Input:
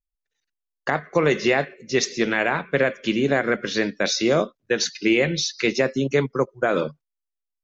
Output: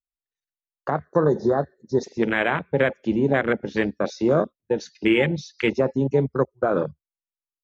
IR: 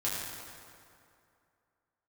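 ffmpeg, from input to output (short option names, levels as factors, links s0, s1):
-filter_complex "[0:a]asettb=1/sr,asplit=3[s0][s1][s2];[s0]atrim=end=1.044[s3];[s1]atrim=start=1.04:end=2.04,asetpts=PTS-STARTPTS,afade=t=in:d=0.004:c=qsin,afade=t=out:st=0.996:d=0.004:c=qsin,asuperstop=centerf=2600:order=12:qfactor=1.4[s4];[s2]atrim=start=2.036[s5];[s3][s4]acrossfade=d=0.004:c1=hsin:c2=qsin[s6];[s6][s5]acrossfade=d=0.004:c1=qsin:c2=hsin,afwtdn=0.0631,equalizer=f=73:t=o:w=1:g=12"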